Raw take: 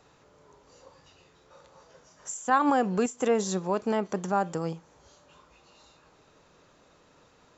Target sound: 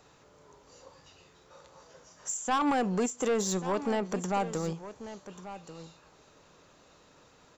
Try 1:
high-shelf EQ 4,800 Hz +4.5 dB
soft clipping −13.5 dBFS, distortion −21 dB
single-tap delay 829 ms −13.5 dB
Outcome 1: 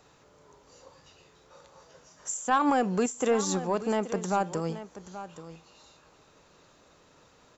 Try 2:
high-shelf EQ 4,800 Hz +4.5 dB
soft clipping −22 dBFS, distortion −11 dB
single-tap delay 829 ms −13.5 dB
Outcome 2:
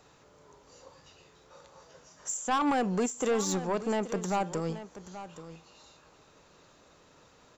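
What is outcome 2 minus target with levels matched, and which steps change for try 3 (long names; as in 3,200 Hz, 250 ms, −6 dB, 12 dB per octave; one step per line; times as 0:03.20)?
echo 310 ms early
change: single-tap delay 1,139 ms −13.5 dB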